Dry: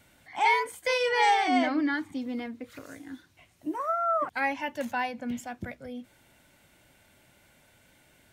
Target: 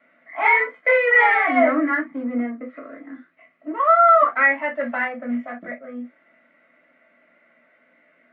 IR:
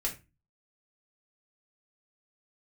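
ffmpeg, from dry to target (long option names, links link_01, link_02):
-filter_complex "[0:a]asettb=1/sr,asplit=3[link_01][link_02][link_03];[link_01]atrim=end=1.594[link_04];[link_02]atrim=start=1.59:end=3.13,asetpts=PTS-STARTPTS,afade=type=in:duration=0.004:curve=qsin,afade=type=out:start_time=1.536:duration=0.004:curve=qsin,tiltshelf=frequency=780:gain=3.5[link_05];[link_03]atrim=start=3.126[link_06];[link_04][link_05]acrossfade=duration=0.004:curve1=hsin:curve2=qsin[link_07];[link_07][link_06]acrossfade=duration=0.004:curve1=qsin:curve2=hsin,asplit=2[link_08][link_09];[link_09]adynamicsmooth=sensitivity=4:basefreq=530,volume=2.5dB[link_10];[link_08][link_10]amix=inputs=2:normalize=0,highpass=frequency=270:width=0.5412,highpass=frequency=270:width=1.3066,equalizer=frequency=290:width_type=q:width=4:gain=-5,equalizer=frequency=410:width_type=q:width=4:gain=-9,equalizer=frequency=610:width_type=q:width=4:gain=5,equalizer=frequency=870:width_type=q:width=4:gain=-7,equalizer=frequency=1200:width_type=q:width=4:gain=8,equalizer=frequency=2000:width_type=q:width=4:gain=8,lowpass=frequency=2200:width=0.5412,lowpass=frequency=2200:width=1.3066[link_11];[1:a]atrim=start_sample=2205,atrim=end_sample=3087[link_12];[link_11][link_12]afir=irnorm=-1:irlink=0,alimiter=level_in=4.5dB:limit=-1dB:release=50:level=0:latency=1,volume=-5dB"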